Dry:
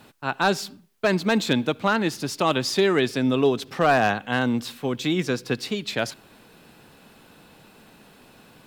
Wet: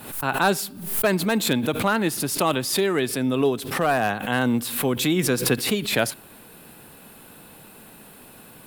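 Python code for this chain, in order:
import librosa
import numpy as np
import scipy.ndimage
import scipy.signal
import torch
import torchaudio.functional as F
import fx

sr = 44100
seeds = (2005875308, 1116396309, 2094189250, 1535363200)

y = fx.rider(x, sr, range_db=4, speed_s=0.5)
y = fx.high_shelf_res(y, sr, hz=7900.0, db=10.0, q=1.5)
y = fx.pre_swell(y, sr, db_per_s=76.0)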